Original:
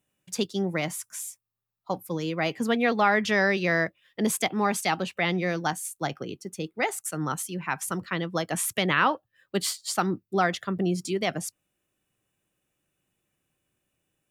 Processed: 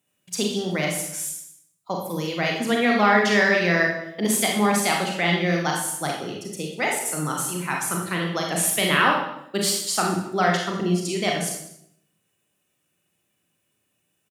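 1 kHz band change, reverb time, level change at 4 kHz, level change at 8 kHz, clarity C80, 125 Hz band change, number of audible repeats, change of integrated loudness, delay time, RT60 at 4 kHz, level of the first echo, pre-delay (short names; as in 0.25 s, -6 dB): +4.0 dB, 0.75 s, +6.5 dB, +7.0 dB, 6.5 dB, +4.5 dB, 1, +4.5 dB, 0.195 s, 0.65 s, -18.5 dB, 31 ms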